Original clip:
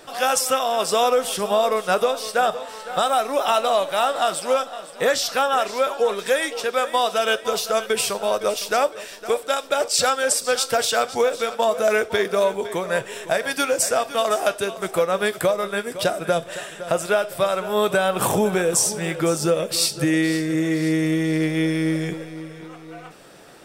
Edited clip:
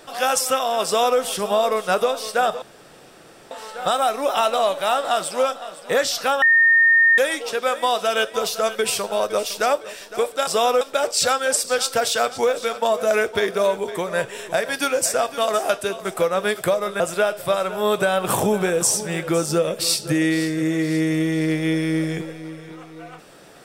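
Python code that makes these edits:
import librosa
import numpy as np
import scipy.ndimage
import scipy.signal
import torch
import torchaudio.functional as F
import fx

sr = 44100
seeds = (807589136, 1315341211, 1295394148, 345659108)

y = fx.edit(x, sr, fx.duplicate(start_s=0.85, length_s=0.34, to_s=9.58),
    fx.insert_room_tone(at_s=2.62, length_s=0.89),
    fx.bleep(start_s=5.53, length_s=0.76, hz=1830.0, db=-11.0),
    fx.cut(start_s=15.77, length_s=1.15), tone=tone)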